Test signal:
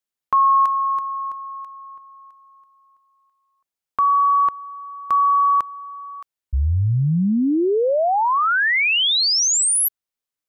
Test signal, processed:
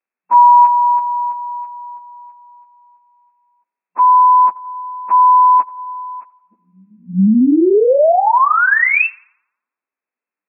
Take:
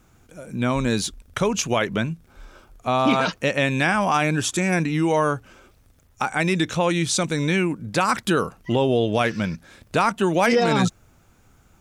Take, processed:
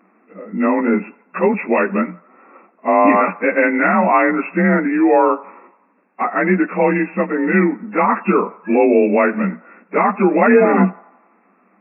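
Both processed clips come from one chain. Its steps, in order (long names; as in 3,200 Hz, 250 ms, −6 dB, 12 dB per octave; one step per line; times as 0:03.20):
partials spread apart or drawn together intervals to 92%
feedback echo with a band-pass in the loop 86 ms, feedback 59%, band-pass 980 Hz, level −20 dB
brick-wall band-pass 180–2,700 Hz
level +8.5 dB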